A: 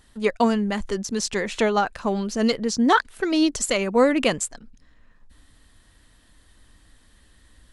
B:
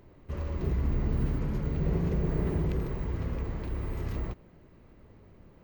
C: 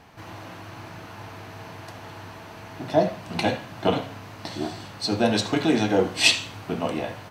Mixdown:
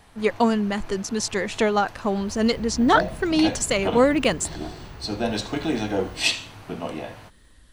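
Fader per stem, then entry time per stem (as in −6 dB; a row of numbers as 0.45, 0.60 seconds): 0.0, −9.5, −4.0 decibels; 0.00, 1.90, 0.00 seconds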